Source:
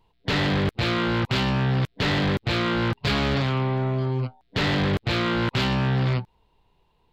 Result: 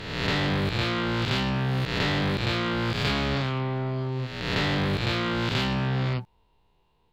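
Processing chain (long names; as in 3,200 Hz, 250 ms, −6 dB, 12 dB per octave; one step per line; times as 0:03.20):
peak hold with a rise ahead of every peak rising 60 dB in 1.18 s
level −4.5 dB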